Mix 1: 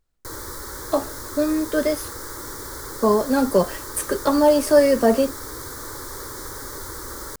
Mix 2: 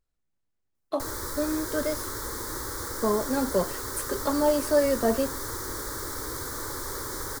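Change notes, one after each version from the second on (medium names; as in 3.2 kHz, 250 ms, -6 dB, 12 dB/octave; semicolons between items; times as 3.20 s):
speech -7.5 dB; background: entry +0.75 s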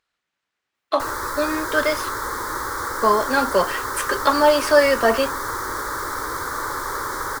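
speech: add frequency weighting D; master: add peaking EQ 1.2 kHz +14 dB 2.2 oct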